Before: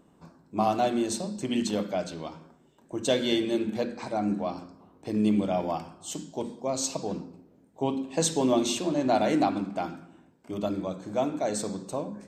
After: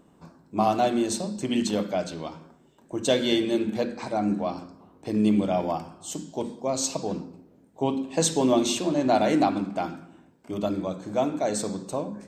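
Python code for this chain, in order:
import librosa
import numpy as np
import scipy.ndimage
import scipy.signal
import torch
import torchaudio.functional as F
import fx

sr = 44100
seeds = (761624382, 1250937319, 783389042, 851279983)

y = fx.dynamic_eq(x, sr, hz=2700.0, q=0.73, threshold_db=-48.0, ratio=4.0, max_db=-4, at=(5.72, 6.29))
y = F.gain(torch.from_numpy(y), 2.5).numpy()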